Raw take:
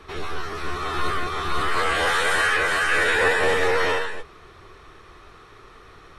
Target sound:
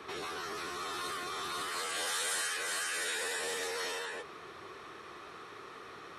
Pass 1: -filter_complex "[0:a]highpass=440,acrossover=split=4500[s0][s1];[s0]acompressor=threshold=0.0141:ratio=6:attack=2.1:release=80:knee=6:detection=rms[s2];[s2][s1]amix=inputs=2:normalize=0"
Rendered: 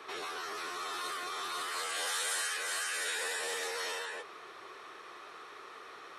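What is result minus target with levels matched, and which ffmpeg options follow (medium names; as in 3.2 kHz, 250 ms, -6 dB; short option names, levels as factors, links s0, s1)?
250 Hz band -5.0 dB
-filter_complex "[0:a]highpass=190,acrossover=split=4500[s0][s1];[s0]acompressor=threshold=0.0141:ratio=6:attack=2.1:release=80:knee=6:detection=rms[s2];[s2][s1]amix=inputs=2:normalize=0"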